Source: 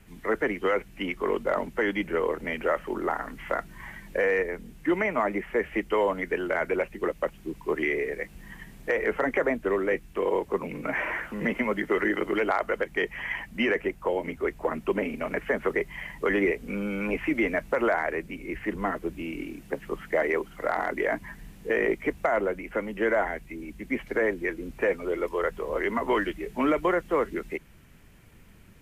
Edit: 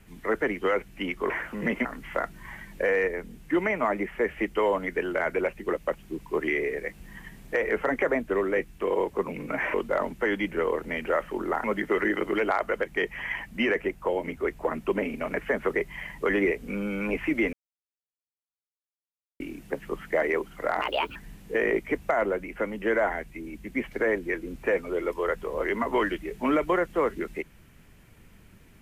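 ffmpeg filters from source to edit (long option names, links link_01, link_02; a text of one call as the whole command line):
ffmpeg -i in.wav -filter_complex "[0:a]asplit=9[link_01][link_02][link_03][link_04][link_05][link_06][link_07][link_08][link_09];[link_01]atrim=end=1.302[link_10];[link_02]atrim=start=11.088:end=11.642[link_11];[link_03]atrim=start=3.198:end=11.092[link_12];[link_04]atrim=start=1.298:end=3.202[link_13];[link_05]atrim=start=11.638:end=17.53,asetpts=PTS-STARTPTS,afade=type=out:start_time=5.888:duration=0.004:curve=hsin[link_14];[link_06]atrim=start=17.53:end=19.4,asetpts=PTS-STARTPTS,volume=0[link_15];[link_07]atrim=start=19.4:end=20.814,asetpts=PTS-STARTPTS,afade=type=in:duration=0.004:curve=hsin[link_16];[link_08]atrim=start=20.81:end=21.31,asetpts=PTS-STARTPTS,asetrate=63504,aresample=44100,atrim=end_sample=15312,asetpts=PTS-STARTPTS[link_17];[link_09]atrim=start=21.306[link_18];[link_10][link_11]acrossfade=duration=0.004:curve1=hsin:curve2=hsin[link_19];[link_19][link_12]acrossfade=duration=0.004:curve1=hsin:curve2=hsin[link_20];[link_20][link_13]acrossfade=duration=0.004:curve1=hsin:curve2=hsin[link_21];[link_14][link_15][link_16]concat=n=3:v=0:a=1[link_22];[link_21][link_22]acrossfade=duration=0.004:curve1=hsin:curve2=hsin[link_23];[link_23][link_17]acrossfade=duration=0.004:curve1=hsin:curve2=hsin[link_24];[link_24][link_18]acrossfade=duration=0.004:curve1=hsin:curve2=hsin" out.wav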